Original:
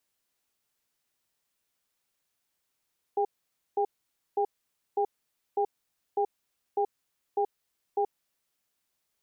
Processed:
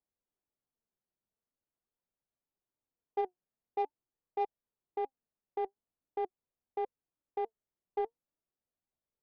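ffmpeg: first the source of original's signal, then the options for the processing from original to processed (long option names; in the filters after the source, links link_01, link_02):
-f lavfi -i "aevalsrc='0.0501*(sin(2*PI*410*t)+sin(2*PI*802*t))*clip(min(mod(t,0.6),0.08-mod(t,0.6))/0.005,0,1)':duration=4.9:sample_rate=44100"
-af "flanger=delay=1.1:depth=4.5:regen=73:speed=0.45:shape=triangular,adynamicsmooth=sensitivity=3:basefreq=830"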